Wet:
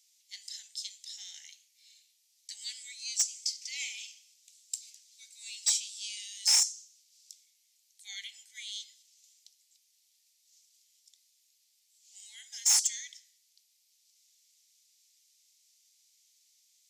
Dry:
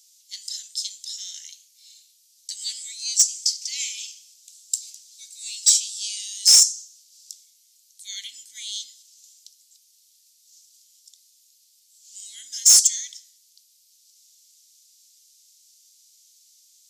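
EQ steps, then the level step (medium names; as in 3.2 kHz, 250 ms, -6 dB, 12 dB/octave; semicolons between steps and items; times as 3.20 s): ladder high-pass 770 Hz, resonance 80%; peaking EQ 2.1 kHz +11.5 dB 1.1 oct; 0.0 dB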